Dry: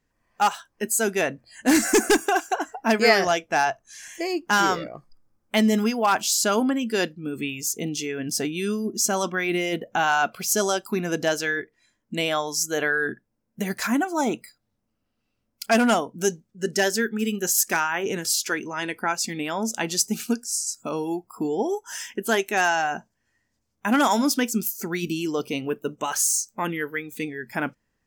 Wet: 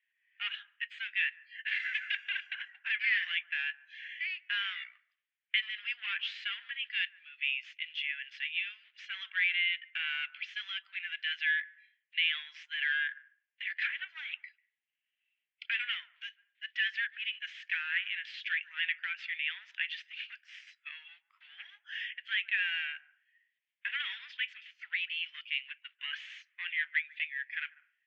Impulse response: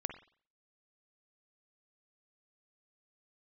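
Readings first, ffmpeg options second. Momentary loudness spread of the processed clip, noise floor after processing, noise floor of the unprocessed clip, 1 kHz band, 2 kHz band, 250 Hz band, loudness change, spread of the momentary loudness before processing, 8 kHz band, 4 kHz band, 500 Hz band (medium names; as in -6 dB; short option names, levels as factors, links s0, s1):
15 LU, under -85 dBFS, -76 dBFS, -29.0 dB, -5.0 dB, under -40 dB, -10.0 dB, 10 LU, under -40 dB, -5.0 dB, under -40 dB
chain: -filter_complex "[0:a]alimiter=limit=0.2:level=0:latency=1,aeval=exprs='0.2*(cos(1*acos(clip(val(0)/0.2,-1,1)))-cos(1*PI/2))+0.0158*(cos(4*acos(clip(val(0)/0.2,-1,1)))-cos(4*PI/2))+0.0158*(cos(5*acos(clip(val(0)/0.2,-1,1)))-cos(5*PI/2))':c=same,acrusher=bits=7:mode=log:mix=0:aa=0.000001,asuperpass=centerf=2400:order=8:qfactor=1.5,asplit=2[s0][s1];[1:a]atrim=start_sample=2205,lowpass=1100,adelay=144[s2];[s1][s2]afir=irnorm=-1:irlink=0,volume=0.2[s3];[s0][s3]amix=inputs=2:normalize=0"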